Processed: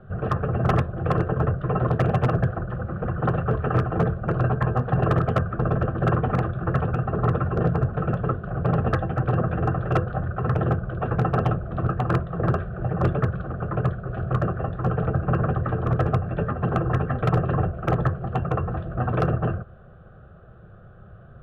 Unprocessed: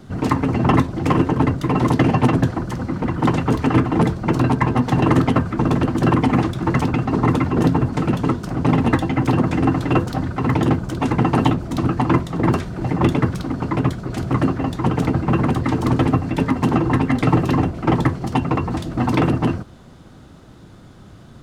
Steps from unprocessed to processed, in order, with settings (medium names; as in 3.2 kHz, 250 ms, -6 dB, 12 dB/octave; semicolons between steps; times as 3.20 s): low-pass 1.9 kHz 24 dB/octave; static phaser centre 1.4 kHz, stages 8; wavefolder -12 dBFS